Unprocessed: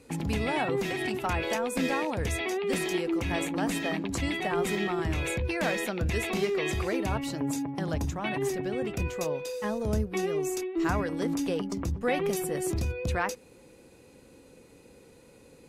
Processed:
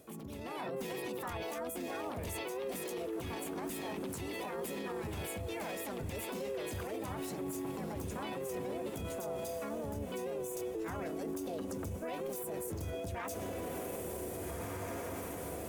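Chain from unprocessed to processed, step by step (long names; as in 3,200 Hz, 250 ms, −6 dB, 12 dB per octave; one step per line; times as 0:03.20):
parametric band 3,200 Hz −12.5 dB 2.9 octaves
pitch-shifted copies added +5 semitones −1 dB
feedback delay with all-pass diffusion 1,645 ms, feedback 53%, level −13.5 dB
reversed playback
downward compressor 6 to 1, threshold −37 dBFS, peak gain reduction 15.5 dB
reversed playback
spectral tilt +2 dB per octave
brickwall limiter −39.5 dBFS, peak gain reduction 11.5 dB
automatic gain control gain up to 6 dB
level +2 dB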